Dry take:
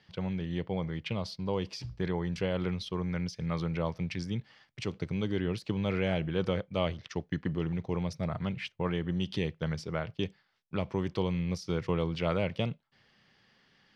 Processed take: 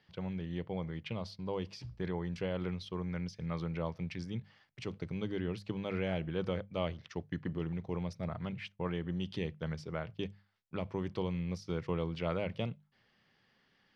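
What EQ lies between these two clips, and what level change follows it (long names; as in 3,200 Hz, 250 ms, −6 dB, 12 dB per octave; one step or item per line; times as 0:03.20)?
high-shelf EQ 4,100 Hz −5.5 dB
mains-hum notches 50/100/150/200 Hz
−4.5 dB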